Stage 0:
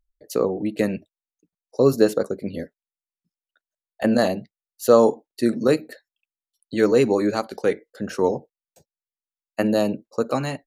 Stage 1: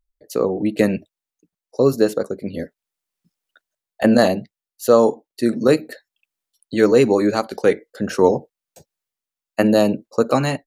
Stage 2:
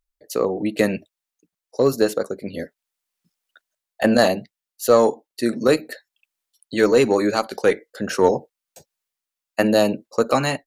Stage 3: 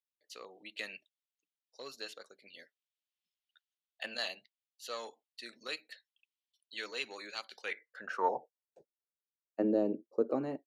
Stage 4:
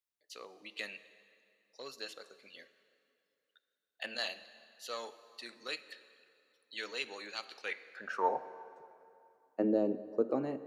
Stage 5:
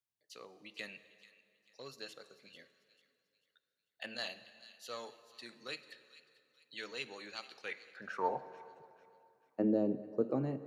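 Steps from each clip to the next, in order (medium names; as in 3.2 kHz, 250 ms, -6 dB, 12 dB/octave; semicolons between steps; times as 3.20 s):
level rider gain up to 14 dB; trim -1 dB
bass shelf 490 Hz -7.5 dB; in parallel at -6 dB: one-sided clip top -15 dBFS; on the sum: trim -1 dB
band-pass sweep 3.2 kHz -> 350 Hz, 7.58–8.88 s; trim -6.5 dB
plate-style reverb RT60 2.7 s, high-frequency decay 0.75×, DRR 13 dB
peaking EQ 130 Hz +14 dB 1.3 oct; feedback echo behind a high-pass 442 ms, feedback 36%, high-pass 2 kHz, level -15.5 dB; trim -4 dB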